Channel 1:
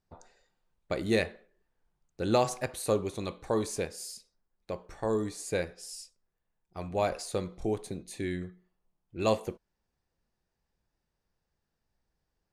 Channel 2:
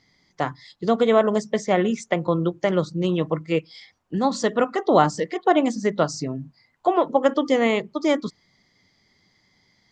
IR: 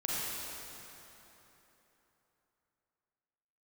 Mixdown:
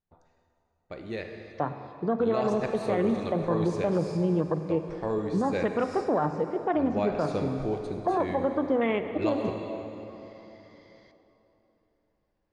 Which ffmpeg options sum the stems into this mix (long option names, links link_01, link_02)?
-filter_complex "[0:a]volume=-3dB,afade=type=in:start_time=2.16:duration=0.32:silence=0.375837,asplit=2[link_01][link_02];[link_02]volume=-7dB[link_03];[1:a]afwtdn=0.0447,alimiter=limit=-11.5dB:level=0:latency=1:release=22,acompressor=mode=upward:threshold=-38dB:ratio=2.5,adelay=1200,volume=-3.5dB,asplit=2[link_04][link_05];[link_05]volume=-15dB[link_06];[2:a]atrim=start_sample=2205[link_07];[link_03][link_06]amix=inputs=2:normalize=0[link_08];[link_08][link_07]afir=irnorm=-1:irlink=0[link_09];[link_01][link_04][link_09]amix=inputs=3:normalize=0,lowpass=3800,alimiter=limit=-16.5dB:level=0:latency=1:release=80"